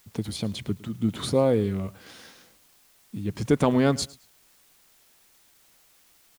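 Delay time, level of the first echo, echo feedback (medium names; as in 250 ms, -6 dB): 108 ms, -21.0 dB, 25%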